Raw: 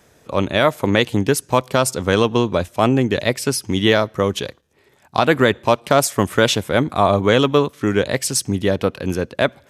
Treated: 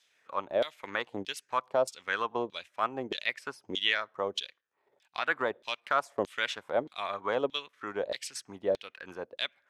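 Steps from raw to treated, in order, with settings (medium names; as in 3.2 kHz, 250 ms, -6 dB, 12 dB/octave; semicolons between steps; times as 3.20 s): LFO band-pass saw down 1.6 Hz 490–3900 Hz; transient shaper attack 0 dB, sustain -5 dB; treble shelf 3.9 kHz +6.5 dB; trim -6 dB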